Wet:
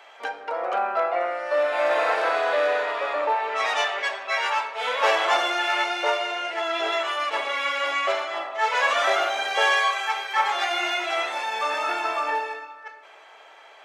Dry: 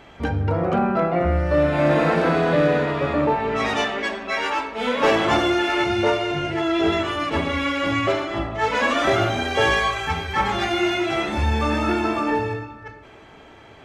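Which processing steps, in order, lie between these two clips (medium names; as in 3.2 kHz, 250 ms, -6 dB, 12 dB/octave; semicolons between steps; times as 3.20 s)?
high-pass 580 Hz 24 dB/octave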